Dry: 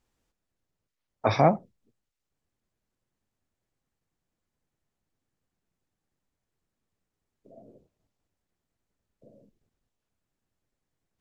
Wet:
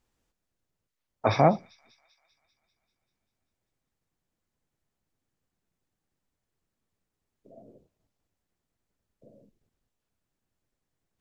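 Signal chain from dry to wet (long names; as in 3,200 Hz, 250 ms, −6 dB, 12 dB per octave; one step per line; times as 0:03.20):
delay with a high-pass on its return 196 ms, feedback 64%, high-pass 3,800 Hz, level −15.5 dB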